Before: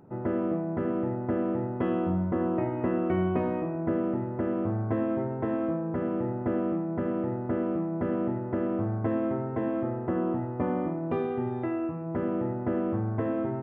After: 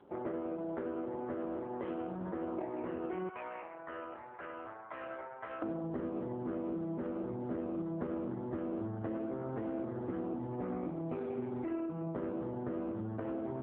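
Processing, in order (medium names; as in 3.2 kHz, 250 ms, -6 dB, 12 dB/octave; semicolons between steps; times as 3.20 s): high-pass 330 Hz 12 dB/octave, from 3.29 s 1.2 kHz, from 5.62 s 130 Hz; compression 6:1, threshold -36 dBFS, peak gain reduction 11.5 dB; trim +2 dB; AMR-NB 4.75 kbps 8 kHz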